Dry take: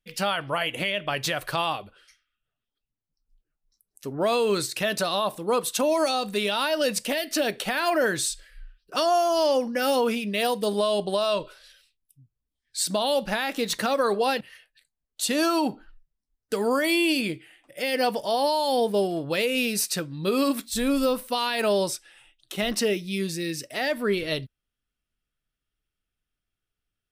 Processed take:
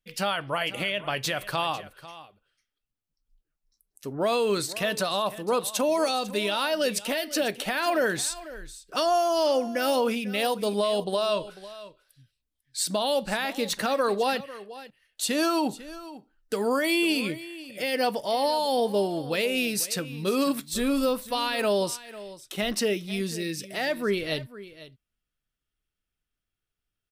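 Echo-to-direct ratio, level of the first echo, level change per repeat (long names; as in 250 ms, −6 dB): −16.5 dB, −16.5 dB, repeats not evenly spaced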